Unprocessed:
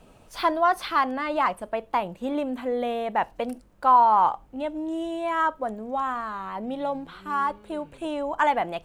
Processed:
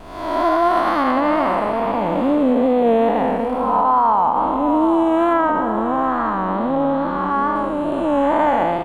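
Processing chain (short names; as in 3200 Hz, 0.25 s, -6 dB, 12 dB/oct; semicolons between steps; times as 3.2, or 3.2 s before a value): time blur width 0.416 s; 5.33–7.56 air absorption 70 m; feedback echo 0.754 s, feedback 47%, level -12.5 dB; vibrato 2.3 Hz 44 cents; high shelf 2000 Hz -10.5 dB; maximiser +23.5 dB; gain -7 dB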